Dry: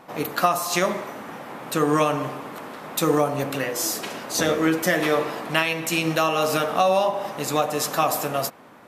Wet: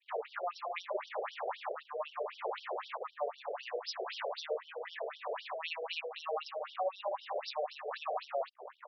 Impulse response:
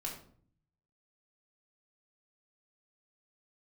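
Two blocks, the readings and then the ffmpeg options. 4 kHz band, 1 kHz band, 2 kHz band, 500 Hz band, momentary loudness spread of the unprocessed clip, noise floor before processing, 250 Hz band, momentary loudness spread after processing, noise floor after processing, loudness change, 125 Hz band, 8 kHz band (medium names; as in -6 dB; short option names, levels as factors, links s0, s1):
-15.0 dB, -15.0 dB, -17.5 dB, -14.5 dB, 11 LU, -46 dBFS, under -35 dB, 4 LU, -59 dBFS, -16.5 dB, under -40 dB, -31.5 dB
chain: -filter_complex "[0:a]acrossover=split=120[s0][s1];[s1]acompressor=threshold=0.0224:ratio=3[s2];[s0][s2]amix=inputs=2:normalize=0,aresample=16000,aresample=44100,acompressor=threshold=0.0158:ratio=2,adynamicequalizer=threshold=0.00158:dfrequency=1500:dqfactor=2:tfrequency=1500:tqfactor=2:attack=5:release=100:ratio=0.375:range=2:mode=cutabove:tftype=bell,bandreject=f=50:t=h:w=6,bandreject=f=100:t=h:w=6,bandreject=f=150:t=h:w=6,bandreject=f=200:t=h:w=6,bandreject=f=250:t=h:w=6,bandreject=f=300:t=h:w=6,bandreject=f=350:t=h:w=6,bandreject=f=400:t=h:w=6,alimiter=level_in=2.51:limit=0.0631:level=0:latency=1:release=17,volume=0.398,equalizer=f=120:t=o:w=2.9:g=5.5,asplit=2[s3][s4];[s4]adelay=80,highpass=300,lowpass=3400,asoftclip=type=hard:threshold=0.0133,volume=0.2[s5];[s3][s5]amix=inputs=2:normalize=0,anlmdn=0.0251,afftfilt=real='re*between(b*sr/1024,510*pow(4200/510,0.5+0.5*sin(2*PI*3.9*pts/sr))/1.41,510*pow(4200/510,0.5+0.5*sin(2*PI*3.9*pts/sr))*1.41)':imag='im*between(b*sr/1024,510*pow(4200/510,0.5+0.5*sin(2*PI*3.9*pts/sr))/1.41,510*pow(4200/510,0.5+0.5*sin(2*PI*3.9*pts/sr))*1.41)':win_size=1024:overlap=0.75,volume=2.51"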